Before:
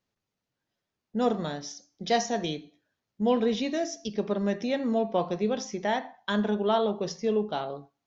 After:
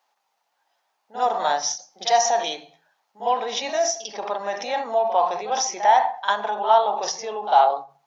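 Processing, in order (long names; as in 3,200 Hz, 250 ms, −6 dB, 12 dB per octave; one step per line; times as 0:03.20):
dynamic equaliser 5,900 Hz, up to +6 dB, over −55 dBFS, Q 5.7
in parallel at +2.5 dB: compressor whose output falls as the input rises −33 dBFS, ratio −1
on the sum: high-pass with resonance 820 Hz, resonance Q 4.9
backwards echo 49 ms −12 dB
on a send at −23 dB: convolution reverb RT60 0.30 s, pre-delay 77 ms
on the sum: every ending faded ahead of time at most 200 dB per second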